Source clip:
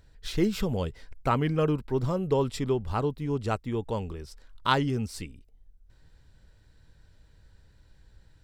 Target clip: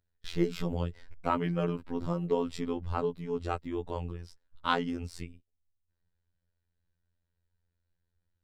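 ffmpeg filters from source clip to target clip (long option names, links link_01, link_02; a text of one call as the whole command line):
ffmpeg -i in.wav -af "highshelf=frequency=5600:gain=-8.5,afftfilt=real='hypot(re,im)*cos(PI*b)':imag='0':win_size=2048:overlap=0.75,agate=range=-20dB:threshold=-48dB:ratio=16:detection=peak" out.wav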